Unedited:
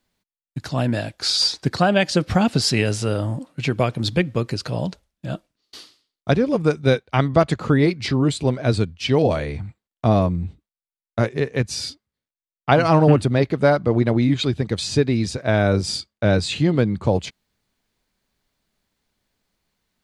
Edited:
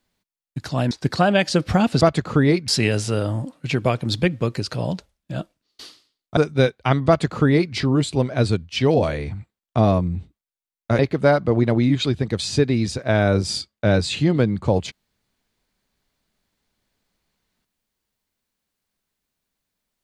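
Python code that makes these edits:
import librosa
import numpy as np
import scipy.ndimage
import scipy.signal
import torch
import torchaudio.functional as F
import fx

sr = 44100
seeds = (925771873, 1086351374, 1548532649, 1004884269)

y = fx.edit(x, sr, fx.cut(start_s=0.91, length_s=0.61),
    fx.cut(start_s=6.31, length_s=0.34),
    fx.duplicate(start_s=7.35, length_s=0.67, to_s=2.62),
    fx.cut(start_s=11.27, length_s=2.11), tone=tone)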